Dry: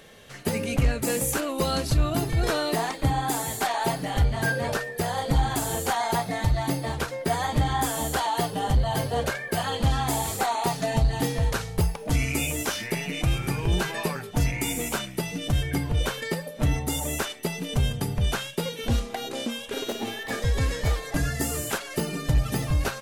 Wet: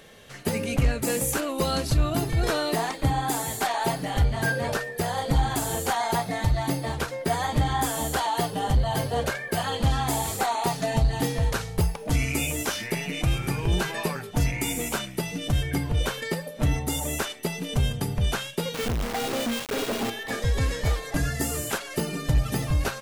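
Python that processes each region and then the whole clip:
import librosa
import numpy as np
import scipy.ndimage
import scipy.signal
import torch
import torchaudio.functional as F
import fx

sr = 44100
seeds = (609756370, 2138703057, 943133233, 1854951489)

y = fx.chain(x, sr, fx.air_absorb(metres=360.0),
    fx.notch(hz=370.0, q=5.9),
    fx.quant_companded(bits=2), at=(18.74, 20.1))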